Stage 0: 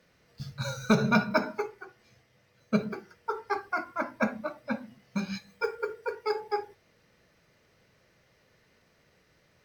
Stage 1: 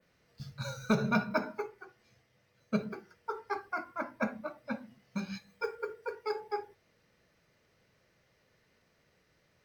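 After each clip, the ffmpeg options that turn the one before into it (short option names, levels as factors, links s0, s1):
-af "adynamicequalizer=threshold=0.00251:dfrequency=5400:dqfactor=0.77:tfrequency=5400:tqfactor=0.77:attack=5:release=100:ratio=0.375:range=2:mode=cutabove:tftype=bell,volume=0.562"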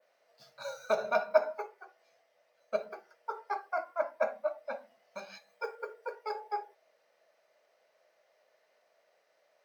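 -af "highpass=f=630:t=q:w=4.9,volume=0.668"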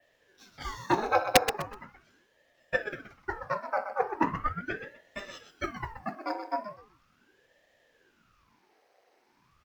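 -af "aeval=exprs='(mod(4.73*val(0)+1,2)-1)/4.73':c=same,aecho=1:1:125|250|375:0.355|0.0781|0.0172,aeval=exprs='val(0)*sin(2*PI*650*n/s+650*0.85/0.39*sin(2*PI*0.39*n/s))':c=same,volume=2"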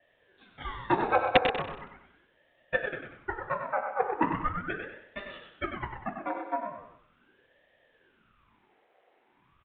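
-af "aecho=1:1:96|192|288|384:0.422|0.16|0.0609|0.0231,aresample=8000,aresample=44100"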